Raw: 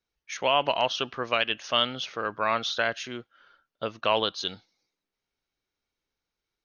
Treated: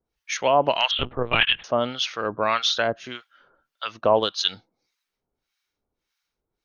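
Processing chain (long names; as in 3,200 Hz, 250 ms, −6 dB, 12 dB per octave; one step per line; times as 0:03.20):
0:03.94–0:04.48: transient designer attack +1 dB, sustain −5 dB
two-band tremolo in antiphase 1.7 Hz, depth 100%, crossover 1,000 Hz
0:00.91–0:01.64: linear-prediction vocoder at 8 kHz pitch kept
level +9 dB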